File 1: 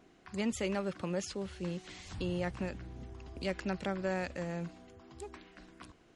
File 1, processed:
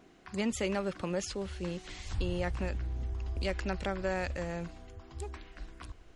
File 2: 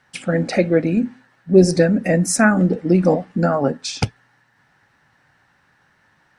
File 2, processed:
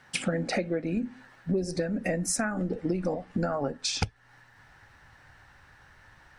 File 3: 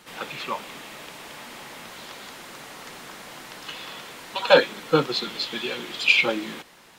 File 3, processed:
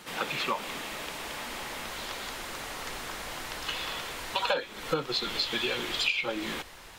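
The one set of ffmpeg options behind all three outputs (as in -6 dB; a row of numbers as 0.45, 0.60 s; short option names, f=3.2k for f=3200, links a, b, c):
-af "asubboost=boost=10:cutoff=61,acompressor=threshold=-28dB:ratio=20,volume=3dB"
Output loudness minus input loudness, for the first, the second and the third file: +2.0, -12.5, -9.0 LU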